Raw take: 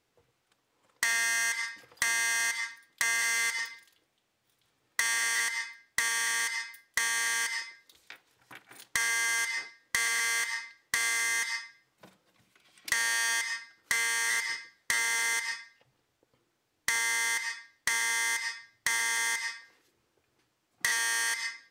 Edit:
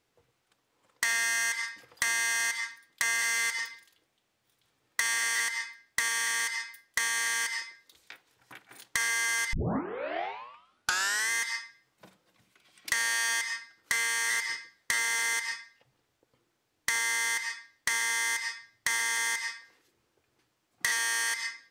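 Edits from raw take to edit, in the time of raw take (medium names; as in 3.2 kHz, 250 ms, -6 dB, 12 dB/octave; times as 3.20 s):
9.53 s: tape start 1.78 s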